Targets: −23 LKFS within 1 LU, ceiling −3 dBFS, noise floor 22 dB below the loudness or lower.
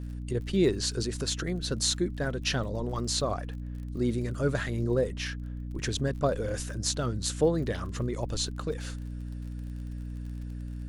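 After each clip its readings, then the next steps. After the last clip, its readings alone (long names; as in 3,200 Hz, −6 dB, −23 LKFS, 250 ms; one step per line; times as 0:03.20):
crackle rate 37 per second; mains hum 60 Hz; hum harmonics up to 300 Hz; level of the hum −34 dBFS; integrated loudness −31.0 LKFS; sample peak −9.0 dBFS; target loudness −23.0 LKFS
→ click removal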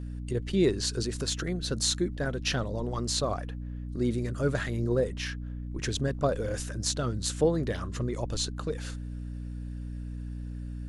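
crackle rate 0 per second; mains hum 60 Hz; hum harmonics up to 300 Hz; level of the hum −34 dBFS
→ mains-hum notches 60/120/180/240/300 Hz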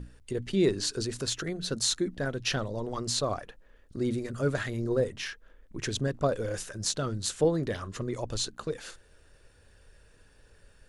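mains hum none found; integrated loudness −31.0 LKFS; sample peak −9.5 dBFS; target loudness −23.0 LKFS
→ level +8 dB
brickwall limiter −3 dBFS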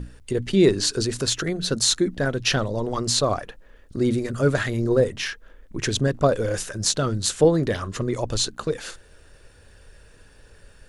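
integrated loudness −23.0 LKFS; sample peak −3.0 dBFS; background noise floor −51 dBFS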